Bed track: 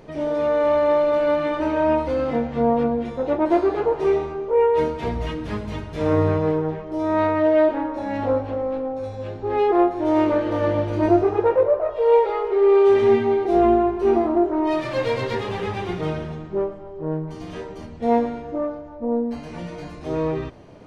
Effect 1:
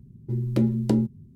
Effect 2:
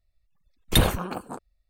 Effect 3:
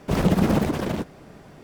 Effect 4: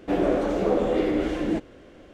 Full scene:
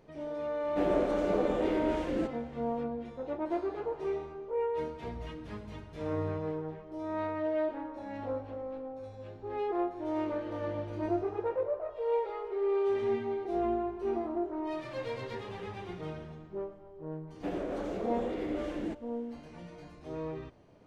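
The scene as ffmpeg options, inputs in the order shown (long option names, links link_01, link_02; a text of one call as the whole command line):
ffmpeg -i bed.wav -i cue0.wav -i cue1.wav -i cue2.wav -i cue3.wav -filter_complex "[4:a]asplit=2[link_01][link_02];[0:a]volume=-14.5dB[link_03];[link_02]alimiter=limit=-16dB:level=0:latency=1:release=80[link_04];[link_01]atrim=end=2.13,asetpts=PTS-STARTPTS,volume=-7.5dB,afade=type=in:duration=0.004:curve=hsin,afade=type=out:start_time=2.126:duration=0.004:curve=hsin,adelay=680[link_05];[link_04]atrim=end=2.13,asetpts=PTS-STARTPTS,volume=-10.5dB,afade=type=in:duration=0.004:curve=hsin,afade=type=out:start_time=2.126:duration=0.004:curve=hsin,adelay=17350[link_06];[link_03][link_05][link_06]amix=inputs=3:normalize=0" out.wav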